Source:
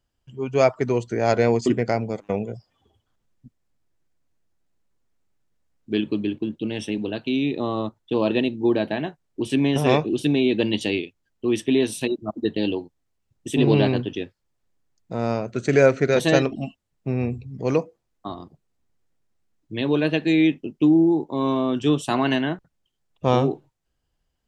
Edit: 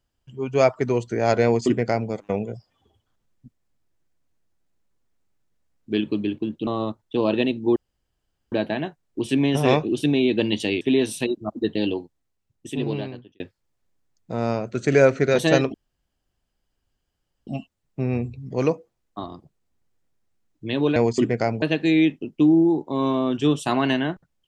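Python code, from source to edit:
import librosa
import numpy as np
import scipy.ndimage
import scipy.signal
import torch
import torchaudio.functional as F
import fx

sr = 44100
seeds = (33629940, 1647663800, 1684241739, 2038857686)

y = fx.edit(x, sr, fx.duplicate(start_s=1.44, length_s=0.66, to_s=20.04),
    fx.cut(start_s=6.67, length_s=0.97),
    fx.insert_room_tone(at_s=8.73, length_s=0.76),
    fx.cut(start_s=11.02, length_s=0.6),
    fx.fade_out_span(start_s=12.79, length_s=1.42),
    fx.insert_room_tone(at_s=16.55, length_s=1.73), tone=tone)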